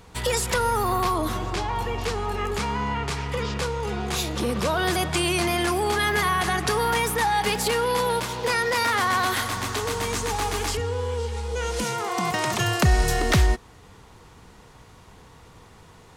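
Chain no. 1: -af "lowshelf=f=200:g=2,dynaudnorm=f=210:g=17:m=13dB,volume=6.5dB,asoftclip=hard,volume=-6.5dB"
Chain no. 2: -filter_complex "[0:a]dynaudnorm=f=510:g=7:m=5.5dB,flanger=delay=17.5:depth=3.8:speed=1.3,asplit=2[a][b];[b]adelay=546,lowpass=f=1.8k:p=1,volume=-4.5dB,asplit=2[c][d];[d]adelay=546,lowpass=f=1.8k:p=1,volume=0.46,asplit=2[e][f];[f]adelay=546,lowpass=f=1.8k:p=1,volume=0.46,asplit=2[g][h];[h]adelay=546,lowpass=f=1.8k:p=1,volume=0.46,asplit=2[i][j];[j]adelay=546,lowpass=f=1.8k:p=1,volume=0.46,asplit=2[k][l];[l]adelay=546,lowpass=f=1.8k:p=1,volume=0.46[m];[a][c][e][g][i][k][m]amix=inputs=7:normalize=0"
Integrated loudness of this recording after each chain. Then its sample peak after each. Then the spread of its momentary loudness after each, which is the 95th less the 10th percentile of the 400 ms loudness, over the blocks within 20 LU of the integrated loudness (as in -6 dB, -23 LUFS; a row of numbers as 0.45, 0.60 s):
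-15.5, -21.5 LUFS; -6.5, -4.0 dBFS; 9, 9 LU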